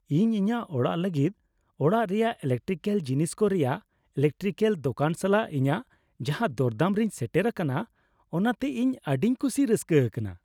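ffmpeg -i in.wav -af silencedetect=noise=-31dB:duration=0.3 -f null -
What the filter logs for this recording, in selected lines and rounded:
silence_start: 1.29
silence_end: 1.80 | silence_duration: 0.52
silence_start: 3.76
silence_end: 4.17 | silence_duration: 0.41
silence_start: 5.80
silence_end: 6.21 | silence_duration: 0.41
silence_start: 7.83
silence_end: 8.34 | silence_duration: 0.51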